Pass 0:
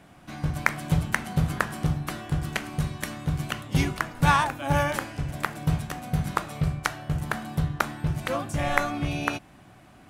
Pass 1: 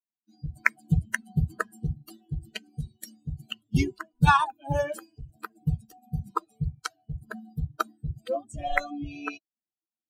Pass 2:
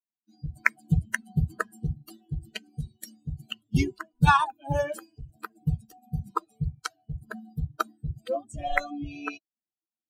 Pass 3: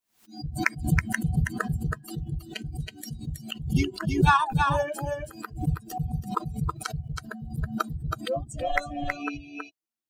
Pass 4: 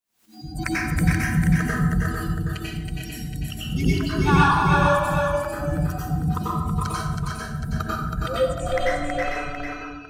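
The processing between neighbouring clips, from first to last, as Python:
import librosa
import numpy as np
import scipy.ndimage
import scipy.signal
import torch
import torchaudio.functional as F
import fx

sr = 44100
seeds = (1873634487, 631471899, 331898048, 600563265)

y1 = fx.bin_expand(x, sr, power=3.0)
y1 = fx.high_shelf(y1, sr, hz=5200.0, db=-5.0)
y1 = y1 * librosa.db_to_amplitude(5.0)
y2 = y1
y3 = 10.0 ** (-6.0 / 20.0) * np.tanh(y2 / 10.0 ** (-6.0 / 20.0))
y3 = y3 + 10.0 ** (-4.5 / 20.0) * np.pad(y3, (int(323 * sr / 1000.0), 0))[:len(y3)]
y3 = fx.pre_swell(y3, sr, db_per_s=130.0)
y4 = 10.0 ** (-11.5 / 20.0) * np.tanh(y3 / 10.0 ** (-11.5 / 20.0))
y4 = y4 + 10.0 ** (-5.0 / 20.0) * np.pad(y4, (int(448 * sr / 1000.0), 0))[:len(y4)]
y4 = fx.rev_plate(y4, sr, seeds[0], rt60_s=0.88, hf_ratio=0.7, predelay_ms=80, drr_db=-7.0)
y4 = y4 * librosa.db_to_amplitude(-3.0)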